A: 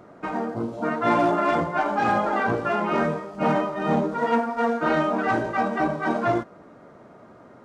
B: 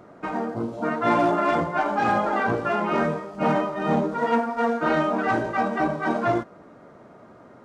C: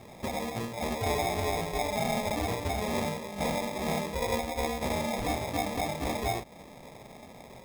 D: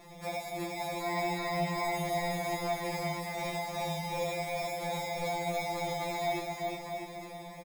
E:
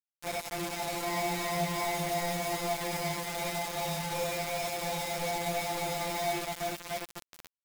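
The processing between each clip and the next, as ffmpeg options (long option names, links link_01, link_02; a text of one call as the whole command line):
ffmpeg -i in.wav -af anull out.wav
ffmpeg -i in.wav -af "equalizer=frequency=310:width_type=o:width=0.67:gain=-12,acompressor=threshold=-37dB:ratio=2,acrusher=samples=30:mix=1:aa=0.000001,volume=2.5dB" out.wav
ffmpeg -i in.wav -filter_complex "[0:a]alimiter=level_in=4dB:limit=-24dB:level=0:latency=1:release=60,volume=-4dB,asplit=2[link_01][link_02];[link_02]aecho=0:1:360|648|878.4|1063|1210:0.631|0.398|0.251|0.158|0.1[link_03];[link_01][link_03]amix=inputs=2:normalize=0,afftfilt=real='re*2.83*eq(mod(b,8),0)':imag='im*2.83*eq(mod(b,8),0)':win_size=2048:overlap=0.75,volume=1dB" out.wav
ffmpeg -i in.wav -af "acrusher=bits=5:mix=0:aa=0.000001" out.wav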